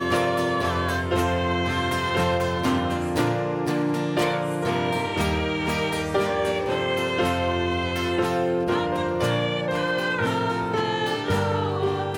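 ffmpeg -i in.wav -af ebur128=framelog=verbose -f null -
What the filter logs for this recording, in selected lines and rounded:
Integrated loudness:
  I:         -24.1 LUFS
  Threshold: -34.1 LUFS
Loudness range:
  LRA:         0.6 LU
  Threshold: -44.1 LUFS
  LRA low:   -24.4 LUFS
  LRA high:  -23.8 LUFS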